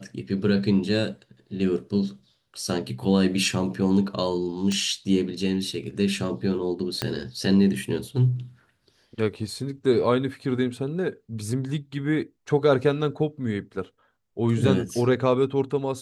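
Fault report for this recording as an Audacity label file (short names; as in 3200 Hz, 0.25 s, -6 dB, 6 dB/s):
4.720000	4.720000	pop -16 dBFS
7.020000	7.020000	pop -10 dBFS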